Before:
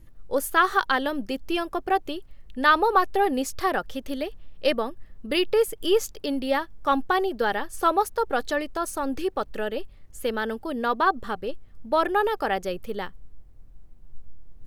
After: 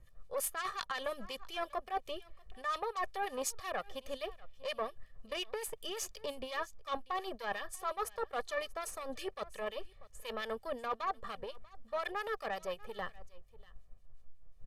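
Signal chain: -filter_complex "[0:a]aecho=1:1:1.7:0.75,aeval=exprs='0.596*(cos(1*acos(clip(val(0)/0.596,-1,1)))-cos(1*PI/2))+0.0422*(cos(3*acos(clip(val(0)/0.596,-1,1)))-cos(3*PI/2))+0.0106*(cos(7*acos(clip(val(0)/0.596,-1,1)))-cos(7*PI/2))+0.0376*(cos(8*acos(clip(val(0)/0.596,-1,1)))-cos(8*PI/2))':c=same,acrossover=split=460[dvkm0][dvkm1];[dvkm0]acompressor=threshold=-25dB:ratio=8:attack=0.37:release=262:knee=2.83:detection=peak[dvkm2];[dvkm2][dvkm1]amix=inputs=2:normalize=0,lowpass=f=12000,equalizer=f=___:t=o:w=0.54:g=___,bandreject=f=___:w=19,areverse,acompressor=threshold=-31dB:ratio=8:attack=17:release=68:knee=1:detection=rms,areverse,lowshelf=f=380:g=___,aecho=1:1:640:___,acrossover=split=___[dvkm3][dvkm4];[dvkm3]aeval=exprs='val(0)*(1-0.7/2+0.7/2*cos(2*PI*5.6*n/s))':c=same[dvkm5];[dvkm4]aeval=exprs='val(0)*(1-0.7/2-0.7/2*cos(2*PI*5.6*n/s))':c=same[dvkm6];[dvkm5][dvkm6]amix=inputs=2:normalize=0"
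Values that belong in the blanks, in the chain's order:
870, 2.5, 1500, -7.5, 0.0944, 2000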